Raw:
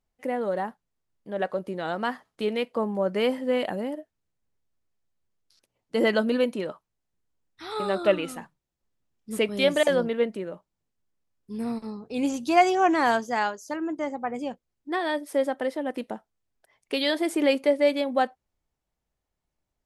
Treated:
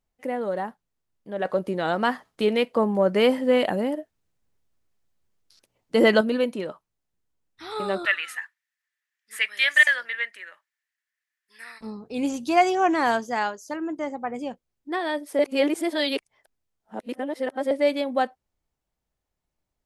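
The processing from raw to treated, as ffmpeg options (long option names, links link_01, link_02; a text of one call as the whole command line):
ffmpeg -i in.wav -filter_complex "[0:a]asettb=1/sr,asplit=3[link_01][link_02][link_03];[link_01]atrim=end=1.454[link_04];[link_02]atrim=start=1.45:end=6.21,asetpts=PTS-STARTPTS,afade=type=in:duration=0.004:curve=qsin,afade=type=out:start_time=4.756:duration=0.004:curve=qsin,acontrast=31[link_05];[link_03]atrim=start=6.206[link_06];[link_04][link_05]acrossfade=duration=0.004:curve1=hsin:curve2=qsin[link_07];[link_07][link_06]acrossfade=duration=0.004:curve1=qsin:curve2=hsin,asettb=1/sr,asplit=3[link_08][link_09][link_10];[link_08]atrim=end=8.054[link_11];[link_09]atrim=start=8.05:end=11.81,asetpts=PTS-STARTPTS,afade=type=in:duration=0.004:curve=qsin,afade=type=out:start_time=3.756:duration=0.004:curve=qsin,highpass=frequency=1800:width_type=q:width=7.4[link_12];[link_10]atrim=start=11.806[link_13];[link_11][link_12]acrossfade=duration=0.004:curve1=hsin:curve2=qsin[link_14];[link_14][link_13]acrossfade=duration=0.004:curve1=qsin:curve2=hsin,asplit=3[link_15][link_16][link_17];[link_15]atrim=end=15.392[link_18];[link_16]atrim=start=15.388:end=17.712,asetpts=PTS-STARTPTS,areverse[link_19];[link_17]atrim=start=17.708[link_20];[link_18][link_19]acrossfade=duration=0.004:curve1=hsin:curve2=hsin[link_21];[link_21][link_20]acrossfade=duration=0.004:curve1=hsin:curve2=hsin" out.wav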